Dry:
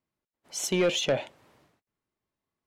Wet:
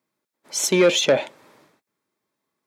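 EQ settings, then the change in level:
high-pass filter 200 Hz 12 dB per octave
notch filter 720 Hz, Q 12
notch filter 2,900 Hz, Q 9.9
+9.0 dB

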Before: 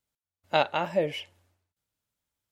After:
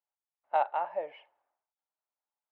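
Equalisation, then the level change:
four-pole ladder band-pass 930 Hz, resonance 50%
high-frequency loss of the air 230 metres
+6.0 dB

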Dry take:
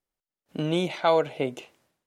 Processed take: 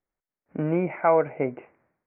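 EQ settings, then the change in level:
Butterworth low-pass 2,300 Hz 72 dB per octave
+1.5 dB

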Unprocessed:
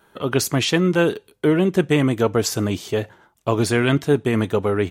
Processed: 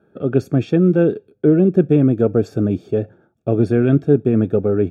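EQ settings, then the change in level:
moving average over 44 samples
high-pass filter 100 Hz
+6.0 dB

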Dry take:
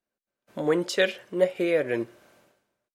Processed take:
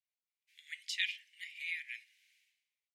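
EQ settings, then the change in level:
Butterworth high-pass 2,000 Hz 72 dB per octave
spectral tilt −4 dB per octave
+2.0 dB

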